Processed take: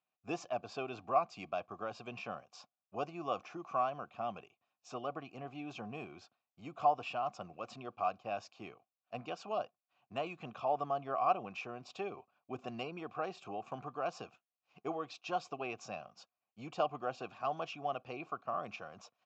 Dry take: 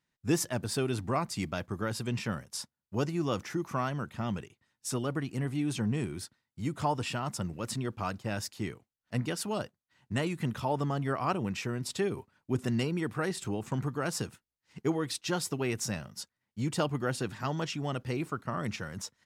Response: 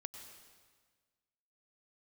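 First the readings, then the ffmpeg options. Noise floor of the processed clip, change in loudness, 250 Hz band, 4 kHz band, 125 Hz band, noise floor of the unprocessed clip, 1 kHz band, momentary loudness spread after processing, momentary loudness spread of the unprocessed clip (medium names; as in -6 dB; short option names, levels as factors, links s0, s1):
under -85 dBFS, -6.0 dB, -14.5 dB, -11.0 dB, -19.5 dB, under -85 dBFS, +1.0 dB, 14 LU, 7 LU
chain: -filter_complex "[0:a]aresample=16000,aresample=44100,asplit=3[s0][s1][s2];[s0]bandpass=f=730:t=q:w=8,volume=1[s3];[s1]bandpass=f=1090:t=q:w=8,volume=0.501[s4];[s2]bandpass=f=2440:t=q:w=8,volume=0.355[s5];[s3][s4][s5]amix=inputs=3:normalize=0,bass=f=250:g=3,treble=f=4000:g=3,volume=2.24"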